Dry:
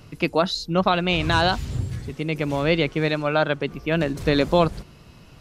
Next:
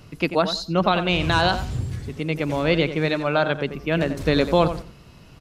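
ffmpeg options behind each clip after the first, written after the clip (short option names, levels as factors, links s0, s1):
-filter_complex "[0:a]asplit=2[s0][s1];[s1]adelay=89,lowpass=f=2500:p=1,volume=0.316,asplit=2[s2][s3];[s3]adelay=89,lowpass=f=2500:p=1,volume=0.23,asplit=2[s4][s5];[s5]adelay=89,lowpass=f=2500:p=1,volume=0.23[s6];[s0][s2][s4][s6]amix=inputs=4:normalize=0"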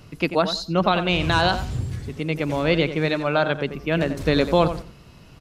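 -af anull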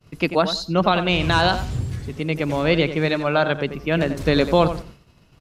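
-af "agate=range=0.0224:threshold=0.0112:ratio=3:detection=peak,volume=1.19"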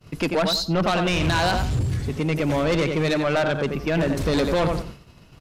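-filter_complex "[0:a]asplit=2[s0][s1];[s1]alimiter=limit=0.2:level=0:latency=1,volume=0.794[s2];[s0][s2]amix=inputs=2:normalize=0,asoftclip=type=tanh:threshold=0.15"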